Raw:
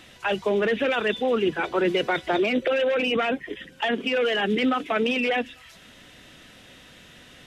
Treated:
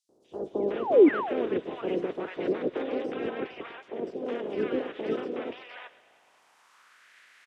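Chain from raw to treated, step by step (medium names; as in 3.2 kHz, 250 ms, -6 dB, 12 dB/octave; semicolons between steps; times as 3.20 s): spectral peaks clipped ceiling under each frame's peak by 26 dB; on a send: thinning echo 107 ms, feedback 73%, high-pass 650 Hz, level -17 dB; on the sum: painted sound fall, 0.60–1.00 s, 260–2400 Hz -15 dBFS; band-pass sweep 390 Hz -> 1.8 kHz, 5.57–6.65 s; three bands offset in time highs, lows, mids 90/460 ms, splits 870/4700 Hz; trim +2.5 dB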